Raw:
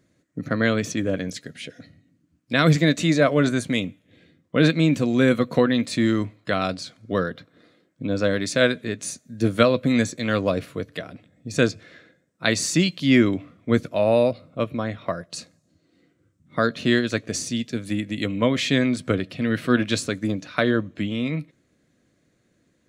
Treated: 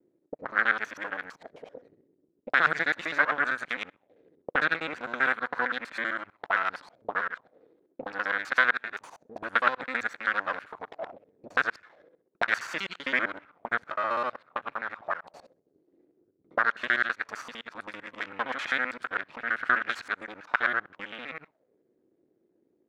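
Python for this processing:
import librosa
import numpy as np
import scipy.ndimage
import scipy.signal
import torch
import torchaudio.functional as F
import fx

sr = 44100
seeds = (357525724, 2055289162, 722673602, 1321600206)

y = fx.local_reverse(x, sr, ms=65.0)
y = np.maximum(y, 0.0)
y = fx.auto_wah(y, sr, base_hz=360.0, top_hz=1500.0, q=3.9, full_db=-26.0, direction='up')
y = y * librosa.db_to_amplitude(9.0)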